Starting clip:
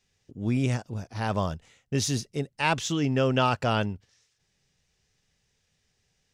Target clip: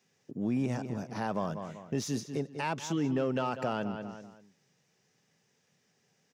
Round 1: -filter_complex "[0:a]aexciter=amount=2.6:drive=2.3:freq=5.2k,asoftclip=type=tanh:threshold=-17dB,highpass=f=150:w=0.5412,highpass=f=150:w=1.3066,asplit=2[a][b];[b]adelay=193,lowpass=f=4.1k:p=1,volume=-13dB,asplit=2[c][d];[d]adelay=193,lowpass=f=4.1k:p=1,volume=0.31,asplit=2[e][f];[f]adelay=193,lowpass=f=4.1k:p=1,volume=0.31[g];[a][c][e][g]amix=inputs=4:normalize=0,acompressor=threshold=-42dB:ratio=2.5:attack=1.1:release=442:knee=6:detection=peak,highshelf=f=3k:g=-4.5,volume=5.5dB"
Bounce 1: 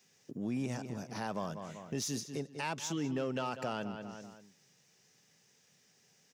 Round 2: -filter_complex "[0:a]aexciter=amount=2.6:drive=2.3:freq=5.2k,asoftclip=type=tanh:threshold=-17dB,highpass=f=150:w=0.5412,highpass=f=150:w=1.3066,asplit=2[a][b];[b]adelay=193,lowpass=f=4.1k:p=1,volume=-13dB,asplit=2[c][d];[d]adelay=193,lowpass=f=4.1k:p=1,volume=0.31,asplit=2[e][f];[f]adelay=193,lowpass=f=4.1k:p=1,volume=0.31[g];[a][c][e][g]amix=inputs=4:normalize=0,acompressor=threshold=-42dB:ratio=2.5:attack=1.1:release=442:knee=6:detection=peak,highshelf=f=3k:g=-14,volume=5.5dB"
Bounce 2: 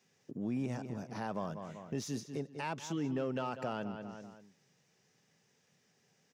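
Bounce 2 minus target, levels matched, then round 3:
compressor: peak gain reduction +5.5 dB
-filter_complex "[0:a]aexciter=amount=2.6:drive=2.3:freq=5.2k,asoftclip=type=tanh:threshold=-17dB,highpass=f=150:w=0.5412,highpass=f=150:w=1.3066,asplit=2[a][b];[b]adelay=193,lowpass=f=4.1k:p=1,volume=-13dB,asplit=2[c][d];[d]adelay=193,lowpass=f=4.1k:p=1,volume=0.31,asplit=2[e][f];[f]adelay=193,lowpass=f=4.1k:p=1,volume=0.31[g];[a][c][e][g]amix=inputs=4:normalize=0,acompressor=threshold=-33dB:ratio=2.5:attack=1.1:release=442:knee=6:detection=peak,highshelf=f=3k:g=-14,volume=5.5dB"

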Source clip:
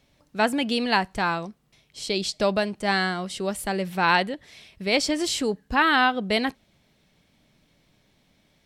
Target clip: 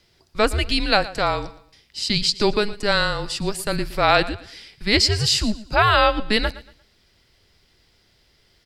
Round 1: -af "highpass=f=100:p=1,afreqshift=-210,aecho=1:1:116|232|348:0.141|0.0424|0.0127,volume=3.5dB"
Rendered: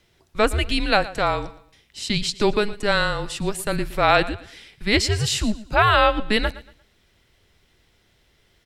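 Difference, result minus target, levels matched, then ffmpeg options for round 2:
4000 Hz band -3.0 dB
-af "highpass=f=100:p=1,equalizer=f=5k:t=o:w=0.28:g=12,afreqshift=-210,aecho=1:1:116|232|348:0.141|0.0424|0.0127,volume=3.5dB"

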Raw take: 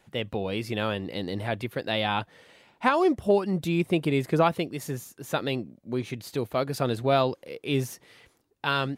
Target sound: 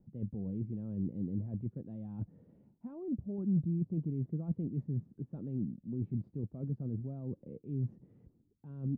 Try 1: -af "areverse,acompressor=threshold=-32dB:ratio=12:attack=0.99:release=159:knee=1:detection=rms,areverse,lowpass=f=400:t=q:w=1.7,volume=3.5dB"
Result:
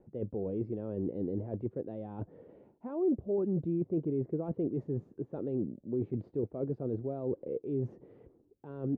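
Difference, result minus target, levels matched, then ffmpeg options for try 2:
500 Hz band +11.5 dB
-af "areverse,acompressor=threshold=-32dB:ratio=12:attack=0.99:release=159:knee=1:detection=rms,areverse,lowpass=f=200:t=q:w=1.7,volume=3.5dB"

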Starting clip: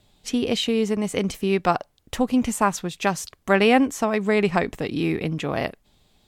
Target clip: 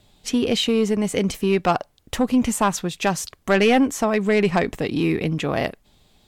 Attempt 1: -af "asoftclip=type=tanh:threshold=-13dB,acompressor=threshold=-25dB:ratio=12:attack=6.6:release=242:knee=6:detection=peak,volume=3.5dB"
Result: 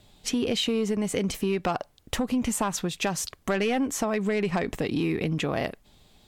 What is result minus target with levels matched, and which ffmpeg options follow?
compressor: peak gain reduction +9.5 dB
-af "asoftclip=type=tanh:threshold=-13dB,volume=3.5dB"

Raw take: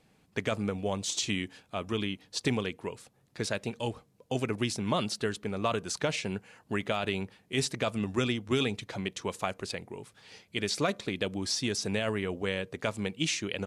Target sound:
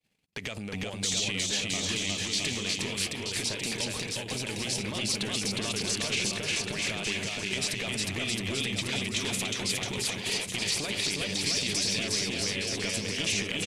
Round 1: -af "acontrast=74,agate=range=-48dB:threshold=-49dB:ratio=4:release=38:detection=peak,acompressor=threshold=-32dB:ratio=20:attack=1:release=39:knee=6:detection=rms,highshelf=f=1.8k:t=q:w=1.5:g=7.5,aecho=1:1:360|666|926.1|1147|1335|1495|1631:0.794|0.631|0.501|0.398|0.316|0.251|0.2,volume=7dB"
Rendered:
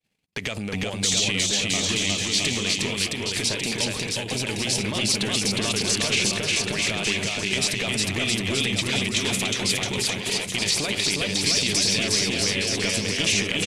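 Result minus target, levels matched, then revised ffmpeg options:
compressor: peak gain reduction -7 dB
-af "acontrast=74,agate=range=-48dB:threshold=-49dB:ratio=4:release=38:detection=peak,acompressor=threshold=-39.5dB:ratio=20:attack=1:release=39:knee=6:detection=rms,highshelf=f=1.8k:t=q:w=1.5:g=7.5,aecho=1:1:360|666|926.1|1147|1335|1495|1631:0.794|0.631|0.501|0.398|0.316|0.251|0.2,volume=7dB"

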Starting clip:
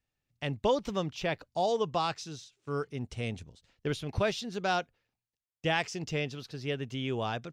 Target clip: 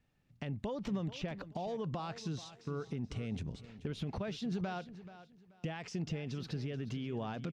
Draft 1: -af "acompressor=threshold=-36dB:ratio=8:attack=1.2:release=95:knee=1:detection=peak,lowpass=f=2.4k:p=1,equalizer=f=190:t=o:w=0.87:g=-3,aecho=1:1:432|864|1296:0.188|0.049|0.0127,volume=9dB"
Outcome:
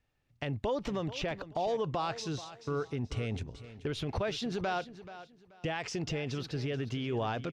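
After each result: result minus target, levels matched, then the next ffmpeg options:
compressor: peak gain reduction -9 dB; 250 Hz band -3.5 dB
-af "acompressor=threshold=-46dB:ratio=8:attack=1.2:release=95:knee=1:detection=peak,lowpass=f=2.4k:p=1,equalizer=f=190:t=o:w=0.87:g=-3,aecho=1:1:432|864|1296:0.188|0.049|0.0127,volume=9dB"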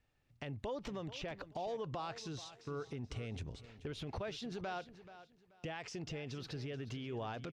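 250 Hz band -3.5 dB
-af "acompressor=threshold=-46dB:ratio=8:attack=1.2:release=95:knee=1:detection=peak,lowpass=f=2.4k:p=1,equalizer=f=190:t=o:w=0.87:g=8,aecho=1:1:432|864|1296:0.188|0.049|0.0127,volume=9dB"

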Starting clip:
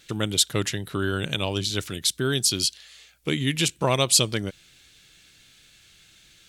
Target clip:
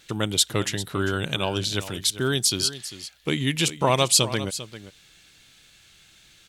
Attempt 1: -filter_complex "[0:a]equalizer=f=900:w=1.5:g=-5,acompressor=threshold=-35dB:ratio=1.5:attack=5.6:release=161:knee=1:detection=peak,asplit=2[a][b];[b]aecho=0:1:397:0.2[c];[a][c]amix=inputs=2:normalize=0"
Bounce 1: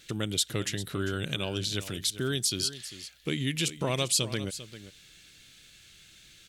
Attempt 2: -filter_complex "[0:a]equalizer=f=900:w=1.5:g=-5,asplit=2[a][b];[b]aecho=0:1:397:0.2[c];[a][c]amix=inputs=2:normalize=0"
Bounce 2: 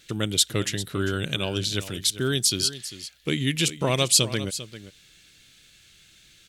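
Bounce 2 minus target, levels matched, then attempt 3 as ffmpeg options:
1000 Hz band -6.5 dB
-filter_complex "[0:a]equalizer=f=900:w=1.5:g=4.5,asplit=2[a][b];[b]aecho=0:1:397:0.2[c];[a][c]amix=inputs=2:normalize=0"

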